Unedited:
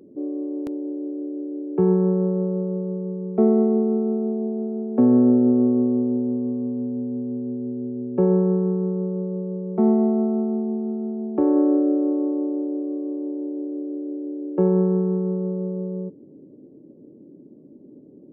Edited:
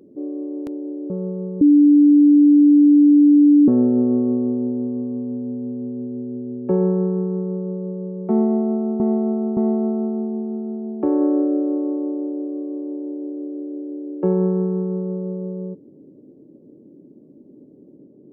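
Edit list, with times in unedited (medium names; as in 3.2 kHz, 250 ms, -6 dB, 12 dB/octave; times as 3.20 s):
1.10–2.59 s: delete
3.10–5.17 s: bleep 292 Hz -8 dBFS
9.92–10.49 s: loop, 3 plays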